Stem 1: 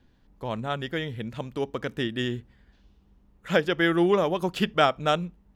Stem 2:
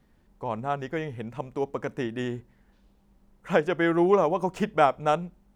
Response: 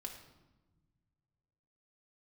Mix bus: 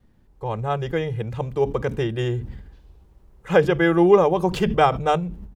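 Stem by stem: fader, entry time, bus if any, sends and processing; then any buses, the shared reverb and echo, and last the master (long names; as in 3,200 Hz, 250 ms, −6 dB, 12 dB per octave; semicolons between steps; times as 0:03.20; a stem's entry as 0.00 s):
−12.0 dB, 0.00 s, no send, low-shelf EQ 290 Hz +11 dB; level that may fall only so fast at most 50 dB per second
−2.5 dB, 2.9 ms, no send, no processing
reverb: not used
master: automatic gain control gain up to 5.5 dB; low-shelf EQ 500 Hz +4 dB; mains-hum notches 50/100/150 Hz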